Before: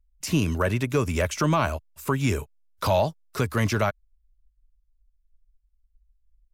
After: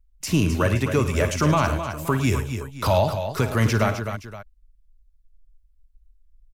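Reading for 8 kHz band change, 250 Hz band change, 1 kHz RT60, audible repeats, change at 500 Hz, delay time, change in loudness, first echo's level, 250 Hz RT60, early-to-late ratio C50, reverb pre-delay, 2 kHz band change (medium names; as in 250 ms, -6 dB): +2.5 dB, +3.0 dB, no reverb, 4, +2.5 dB, 53 ms, +3.0 dB, -12.5 dB, no reverb, no reverb, no reverb, +2.5 dB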